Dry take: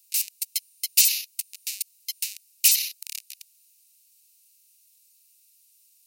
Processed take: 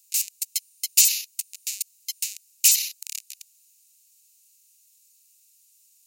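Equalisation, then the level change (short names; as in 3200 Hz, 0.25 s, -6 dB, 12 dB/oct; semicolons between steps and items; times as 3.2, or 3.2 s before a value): bell 7000 Hz +8.5 dB 0.34 oct; -1.0 dB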